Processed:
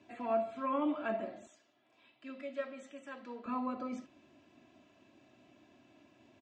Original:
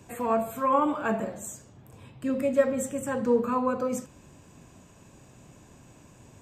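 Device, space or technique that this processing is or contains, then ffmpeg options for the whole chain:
kitchen radio: -filter_complex "[0:a]highpass=220,equalizer=f=430:t=q:w=4:g=-8,equalizer=f=1k:t=q:w=4:g=-8,equalizer=f=1.5k:t=q:w=4:g=-5,lowpass=f=4.3k:w=0.5412,lowpass=f=4.3k:w=1.3066,asettb=1/sr,asplit=3[a][b][c];[a]atrim=end=1.474[d];[b]atrim=start=1.47:end=3.46,asetpts=PTS-STARTPTS,afade=t=in:d=0.004:c=qsin,afade=t=out:st=1.986:d=0.004:c=qsin,highpass=f=1.1k:p=1[e];[c]atrim=start=3.456[f];[d][e]acrossfade=d=0.004:c1=hsin:c2=qsin[g];[g][f]acrossfade=d=0.004:c1=qsin:c2=hsin,aecho=1:1:3:0.63,volume=-6.5dB"

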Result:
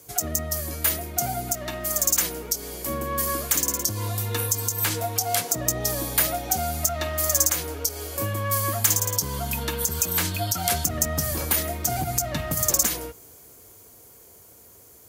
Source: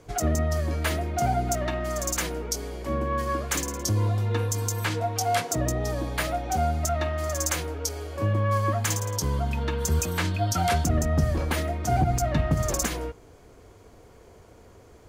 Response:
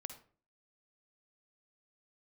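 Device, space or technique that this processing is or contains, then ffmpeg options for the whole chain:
FM broadcast chain: -filter_complex "[0:a]highpass=74,dynaudnorm=f=240:g=21:m=5.5dB,acrossover=split=690|1800|6700[a][b][c][d];[a]acompressor=threshold=-22dB:ratio=4[e];[b]acompressor=threshold=-27dB:ratio=4[f];[c]acompressor=threshold=-30dB:ratio=4[g];[d]acompressor=threshold=-45dB:ratio=4[h];[e][f][g][h]amix=inputs=4:normalize=0,aemphasis=mode=production:type=50fm,alimiter=limit=-9dB:level=0:latency=1:release=186,asoftclip=type=hard:threshold=-13dB,lowpass=f=15k:w=0.5412,lowpass=f=15k:w=1.3066,aemphasis=mode=production:type=50fm,volume=-4dB"

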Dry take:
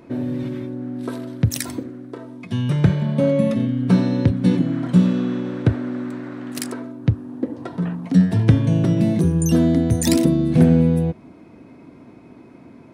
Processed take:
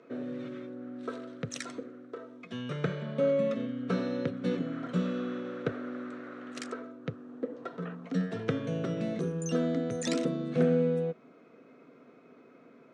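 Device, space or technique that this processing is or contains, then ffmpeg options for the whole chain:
television speaker: -af "highpass=f=180:w=0.5412,highpass=f=180:w=1.3066,equalizer=f=200:t=q:w=4:g=-8,equalizer=f=320:t=q:w=4:g=-9,equalizer=f=470:t=q:w=4:g=8,equalizer=f=910:t=q:w=4:g=-9,equalizer=f=1.3k:t=q:w=4:g=9,equalizer=f=4.9k:t=q:w=4:g=-6,lowpass=f=6.8k:w=0.5412,lowpass=f=6.8k:w=1.3066,volume=-8.5dB"

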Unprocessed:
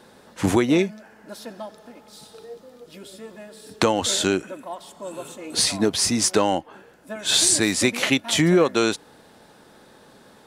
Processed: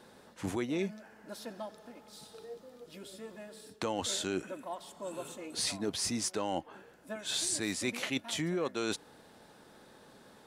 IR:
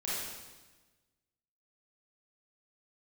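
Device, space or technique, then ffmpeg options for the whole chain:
compression on the reversed sound: -af "areverse,acompressor=threshold=-24dB:ratio=6,areverse,volume=-6.5dB"

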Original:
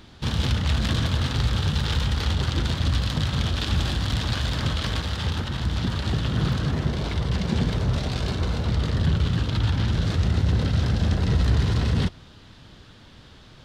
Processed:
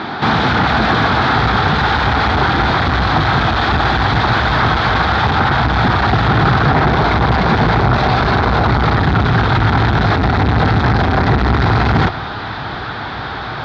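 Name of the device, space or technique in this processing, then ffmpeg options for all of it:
overdrive pedal into a guitar cabinet: -filter_complex "[0:a]asubboost=boost=7.5:cutoff=74,asplit=2[a][b];[b]highpass=f=720:p=1,volume=42dB,asoftclip=type=tanh:threshold=-0.5dB[c];[a][c]amix=inputs=2:normalize=0,lowpass=f=1.2k:p=1,volume=-6dB,highpass=77,equalizer=f=82:t=q:w=4:g=-9,equalizer=f=540:t=q:w=4:g=-7,equalizer=f=780:t=q:w=4:g=7,equalizer=f=1.4k:t=q:w=4:g=4,equalizer=f=2.9k:t=q:w=4:g=-9,lowpass=f=4.4k:w=0.5412,lowpass=f=4.4k:w=1.3066,volume=-1dB"

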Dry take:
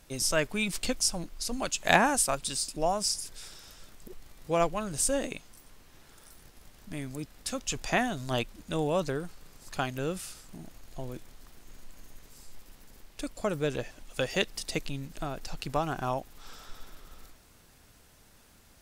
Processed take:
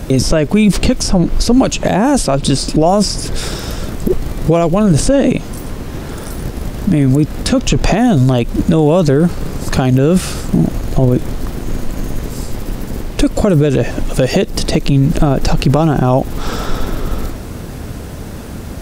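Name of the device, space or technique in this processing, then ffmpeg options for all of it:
mastering chain: -filter_complex "[0:a]highpass=f=45:p=1,equalizer=f=840:t=o:w=0.77:g=-2,acrossover=split=970|2500|5700[a][b][c][d];[a]acompressor=threshold=-34dB:ratio=4[e];[b]acompressor=threshold=-44dB:ratio=4[f];[c]acompressor=threshold=-39dB:ratio=4[g];[d]acompressor=threshold=-47dB:ratio=4[h];[e][f][g][h]amix=inputs=4:normalize=0,acompressor=threshold=-39dB:ratio=2,tiltshelf=f=970:g=8.5,asoftclip=type=hard:threshold=-23.5dB,alimiter=level_in=31dB:limit=-1dB:release=50:level=0:latency=1,volume=-1.5dB"

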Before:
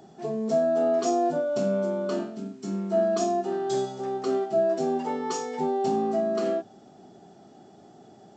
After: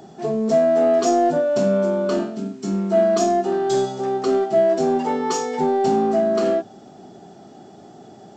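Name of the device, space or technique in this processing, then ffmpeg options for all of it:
parallel distortion: -filter_complex "[0:a]asplit=2[a][b];[b]asoftclip=type=hard:threshold=-26.5dB,volume=-10.5dB[c];[a][c]amix=inputs=2:normalize=0,volume=5.5dB"

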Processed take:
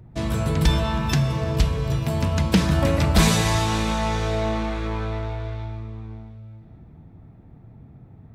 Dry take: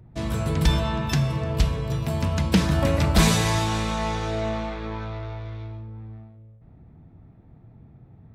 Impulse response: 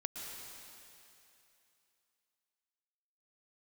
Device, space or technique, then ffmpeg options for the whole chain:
ducked reverb: -filter_complex "[0:a]asplit=3[a][b][c];[1:a]atrim=start_sample=2205[d];[b][d]afir=irnorm=-1:irlink=0[e];[c]apad=whole_len=367881[f];[e][f]sidechaincompress=threshold=-25dB:ratio=8:attack=16:release=390,volume=-4.5dB[g];[a][g]amix=inputs=2:normalize=0"

